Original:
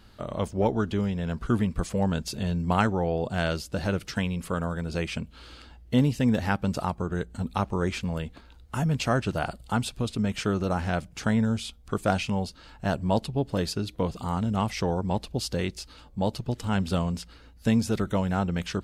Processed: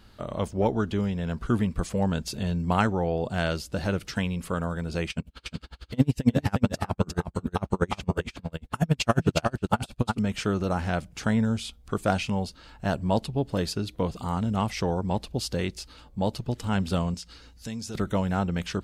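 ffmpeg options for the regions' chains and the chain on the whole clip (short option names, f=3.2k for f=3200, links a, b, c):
-filter_complex "[0:a]asettb=1/sr,asplit=3[a][b][c];[a]atrim=end=5.104[d];[b]atrim=start=5.1:end=10.19,asetpts=PTS-STARTPTS,afade=t=in:d=0.004:c=qsin,afade=t=out:st=5.086:d=0.004:c=qsin,acontrast=77,aecho=1:1:357:0.596,atrim=end_sample=224469,aeval=exprs='val(0)*pow(10,-37*(0.5-0.5*cos(2*PI*11*n/s))/20)':c=same[e];[c]atrim=start=10.186[f];[d][e]acrossfade=d=0.004:c1=hsin:c2=qsin[g];[g][f]acrossfade=d=0.004:c1=qsin:c2=hsin,asettb=1/sr,asplit=3[h][i][j];[h]atrim=end=17.144[k];[i]atrim=start=17.14:end=17.95,asetpts=PTS-STARTPTS,afade=t=in:d=0.004:c=qsin,afade=t=out:st=0.806:d=0.004:c=qsin,equalizer=f=5.9k:t=o:w=1.6:g=10.5,acompressor=threshold=-42dB:ratio=2:attack=3.2:release=140:knee=1:detection=peak,bandreject=f=620:w=16[l];[j]atrim=start=17.946[m];[k][l]acrossfade=d=0.004:c1=hsin:c2=qsin[n];[n][m]acrossfade=d=0.004:c1=qsin:c2=hsin"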